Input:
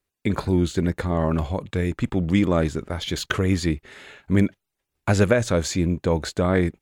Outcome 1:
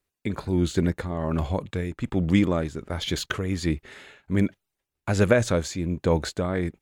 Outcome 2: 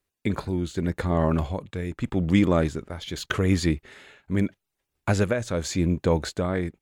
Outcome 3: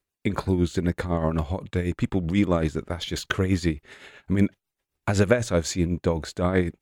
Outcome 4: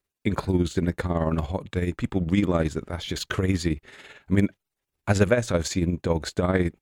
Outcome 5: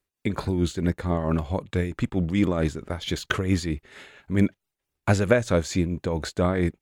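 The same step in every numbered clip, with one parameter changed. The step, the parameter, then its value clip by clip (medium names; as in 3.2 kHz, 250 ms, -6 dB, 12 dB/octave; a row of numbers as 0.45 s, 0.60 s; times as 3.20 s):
tremolo, rate: 1.3 Hz, 0.83 Hz, 7.9 Hz, 18 Hz, 4.5 Hz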